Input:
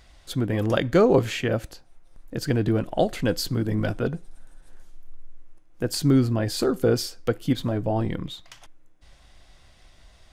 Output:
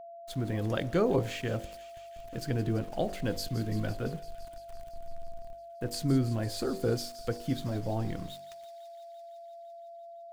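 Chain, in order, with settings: sample gate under -38.5 dBFS; low shelf 120 Hz +5.5 dB; de-hum 48.33 Hz, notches 21; whine 680 Hz -35 dBFS; thin delay 0.169 s, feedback 79%, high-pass 2900 Hz, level -12.5 dB; gain -9 dB

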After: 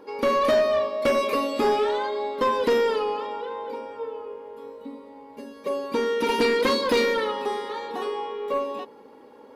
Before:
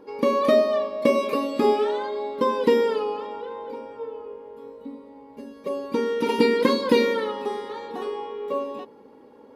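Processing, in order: low shelf 400 Hz -9 dB; soft clip -20.5 dBFS, distortion -13 dB; gain +5 dB

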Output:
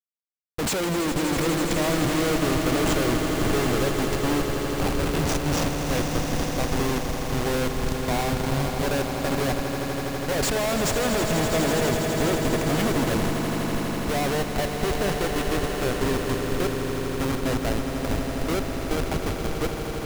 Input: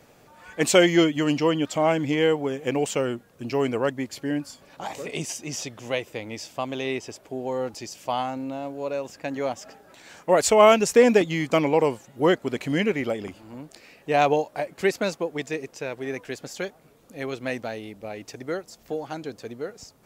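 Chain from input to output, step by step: Schmitt trigger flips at -29 dBFS; swelling echo 82 ms, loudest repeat 8, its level -11 dB

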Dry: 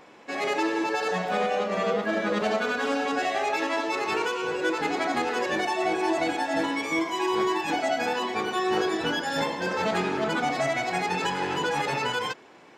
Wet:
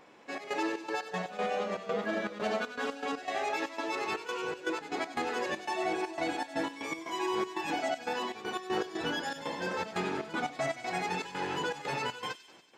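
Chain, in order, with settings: step gate "xxx.xx.x.x.xxx." 119 bpm -12 dB; thin delay 95 ms, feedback 65%, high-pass 3300 Hz, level -10 dB; gain -6 dB

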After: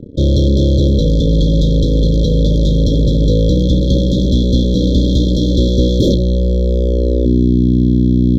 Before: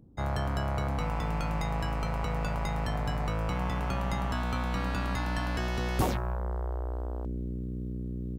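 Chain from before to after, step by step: bell 12000 Hz -9.5 dB 1.9 oct; sample leveller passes 5; brick-wall FIR band-stop 600–3200 Hz; reverb RT60 0.55 s, pre-delay 3 ms, DRR 18.5 dB; gain -1.5 dB

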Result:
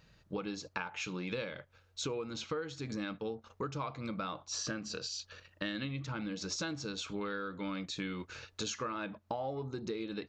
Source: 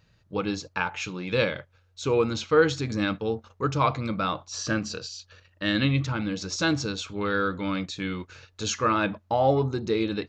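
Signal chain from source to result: bell 100 Hz -13.5 dB 0.28 oct; compressor 12:1, threshold -36 dBFS, peak gain reduction 22.5 dB; gain +1 dB

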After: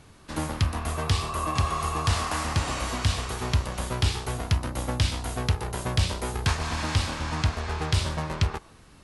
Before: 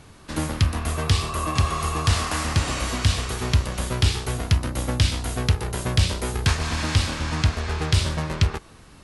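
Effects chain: dynamic EQ 870 Hz, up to +5 dB, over -44 dBFS, Q 1.3; gain -4.5 dB

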